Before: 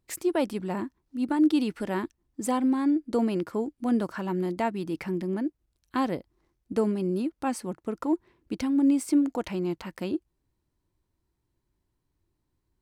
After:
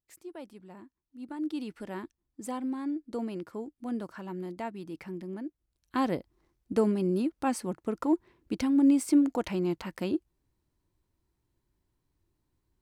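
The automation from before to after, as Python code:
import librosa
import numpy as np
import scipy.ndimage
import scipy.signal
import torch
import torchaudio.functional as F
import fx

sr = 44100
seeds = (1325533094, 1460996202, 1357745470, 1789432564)

y = fx.gain(x, sr, db=fx.line((0.84, -18.0), (1.76, -9.0), (5.44, -9.0), (6.11, 0.0)))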